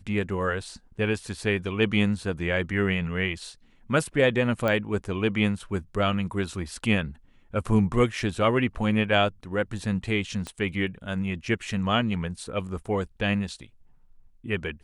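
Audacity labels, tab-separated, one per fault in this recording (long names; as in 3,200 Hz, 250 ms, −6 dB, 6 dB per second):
4.680000	4.680000	click −14 dBFS
10.470000	10.470000	click −20 dBFS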